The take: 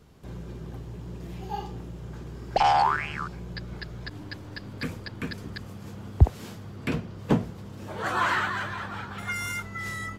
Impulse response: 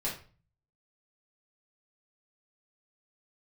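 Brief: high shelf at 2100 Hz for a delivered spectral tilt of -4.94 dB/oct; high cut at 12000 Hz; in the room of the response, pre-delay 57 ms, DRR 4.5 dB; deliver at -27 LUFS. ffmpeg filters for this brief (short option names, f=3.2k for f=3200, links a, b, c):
-filter_complex "[0:a]lowpass=12k,highshelf=f=2.1k:g=5,asplit=2[a][b];[1:a]atrim=start_sample=2205,adelay=57[c];[b][c]afir=irnorm=-1:irlink=0,volume=-9dB[d];[a][d]amix=inputs=2:normalize=0"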